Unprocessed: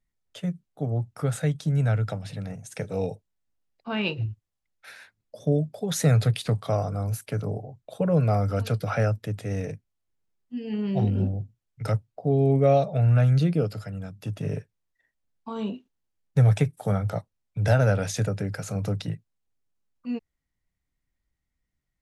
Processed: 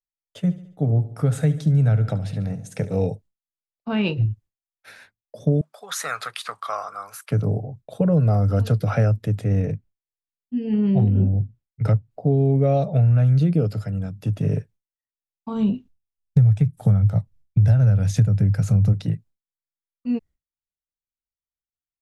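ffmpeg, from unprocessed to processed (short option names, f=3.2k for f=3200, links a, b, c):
-filter_complex "[0:a]asplit=3[a][b][c];[a]afade=t=out:st=0.45:d=0.02[d];[b]aecho=1:1:71|142|213|284|355:0.168|0.0907|0.049|0.0264|0.0143,afade=t=in:st=0.45:d=0.02,afade=t=out:st=3.07:d=0.02[e];[c]afade=t=in:st=3.07:d=0.02[f];[d][e][f]amix=inputs=3:normalize=0,asettb=1/sr,asplit=3[g][h][i];[g]atrim=end=5.614[j];[h]atrim=start=5.61:end=7.31,asetpts=PTS-STARTPTS,afade=t=in:d=0.004:c=qsin,afade=t=out:st=1.696:d=0.004:c=qsin,highpass=f=1.2k:t=q:w=4.3[k];[i]atrim=start=7.306[l];[j][k]acrossfade=d=0.004:c1=hsin:c2=qsin[m];[m][l]acrossfade=d=0.004:c1=qsin:c2=hsin,asettb=1/sr,asplit=3[n][o][p];[n]atrim=end=8.084[q];[o]atrim=start=8.08:end=8.76,asetpts=PTS-STARTPTS,afade=t=in:d=0.004:c=qsin,afade=t=out:st=0.676:d=0.004:c=qsin,bandreject=f=2.3k:w=5.3[r];[p]atrim=start=8.756[s];[q][r]acrossfade=d=0.004:c1=hsin:c2=qsin[t];[t][s]acrossfade=d=0.004:c1=qsin:c2=hsin,asettb=1/sr,asplit=3[u][v][w];[u]atrim=end=9.444[x];[v]atrim=start=9.44:end=12.11,asetpts=PTS-STARTPTS,afade=t=in:d=0.004:c=qsin,afade=t=out:st=2.666:d=0.004:c=qsin,bass=f=250:g=2,treble=f=4k:g=-8[y];[w]atrim=start=12.106[z];[x][y]acrossfade=d=0.004:c1=hsin:c2=qsin[aa];[aa][z]acrossfade=d=0.004:c1=qsin:c2=hsin,asplit=3[ab][ac][ad];[ab]afade=t=out:st=15.53:d=0.02[ae];[ac]asubboost=boost=4:cutoff=170,afade=t=in:st=15.53:d=0.02,afade=t=out:st=18.92:d=0.02[af];[ad]afade=t=in:st=18.92:d=0.02[ag];[ae][af][ag]amix=inputs=3:normalize=0,agate=range=-33dB:threshold=-47dB:ratio=3:detection=peak,lowshelf=f=420:g=9.5,acompressor=threshold=-14dB:ratio=6"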